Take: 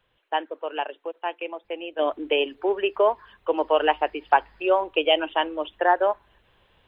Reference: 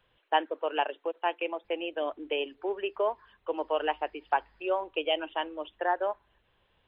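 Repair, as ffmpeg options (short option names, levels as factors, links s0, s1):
-af "agate=range=0.0891:threshold=0.00178,asetnsamples=n=441:p=0,asendcmd='1.99 volume volume -8.5dB',volume=1"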